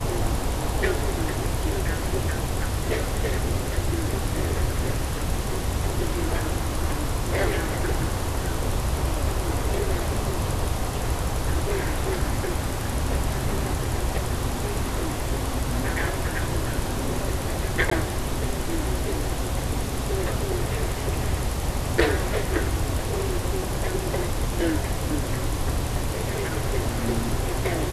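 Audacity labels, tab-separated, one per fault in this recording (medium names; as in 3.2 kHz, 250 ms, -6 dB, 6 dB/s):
17.900000	17.910000	dropout 14 ms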